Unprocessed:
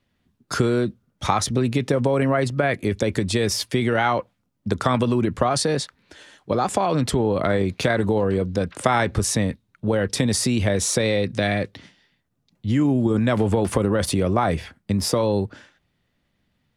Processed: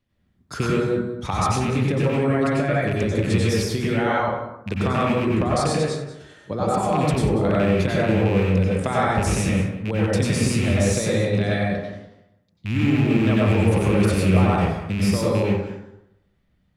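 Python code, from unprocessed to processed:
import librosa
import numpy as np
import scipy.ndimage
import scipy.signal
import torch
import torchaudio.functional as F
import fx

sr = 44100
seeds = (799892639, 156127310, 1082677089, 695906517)

y = fx.rattle_buzz(x, sr, strikes_db=-21.0, level_db=-14.0)
y = fx.low_shelf(y, sr, hz=240.0, db=6.0)
y = y + 10.0 ** (-14.5 / 20.0) * np.pad(y, (int(188 * sr / 1000.0), 0))[:len(y)]
y = fx.rev_plate(y, sr, seeds[0], rt60_s=0.86, hf_ratio=0.4, predelay_ms=80, drr_db=-5.5)
y = y * 10.0 ** (-8.5 / 20.0)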